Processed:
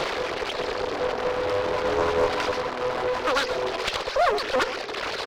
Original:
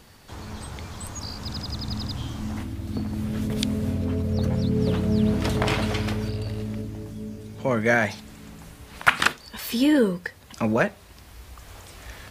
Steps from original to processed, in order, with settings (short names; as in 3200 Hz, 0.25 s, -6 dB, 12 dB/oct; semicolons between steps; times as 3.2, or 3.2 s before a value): delta modulation 16 kbps, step -20 dBFS; reverb removal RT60 1.9 s; elliptic band-pass 180–2000 Hz, stop band 40 dB; tilt -3 dB/oct; in parallel at -1 dB: limiter -18.5 dBFS, peak gain reduction 11.5 dB; on the sum: one-sided clip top -26.5 dBFS; on a send: echo 0.298 s -11.5 dB; on the sum: speed mistake 33 rpm record played at 78 rpm; Doppler distortion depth 0.53 ms; gain -2 dB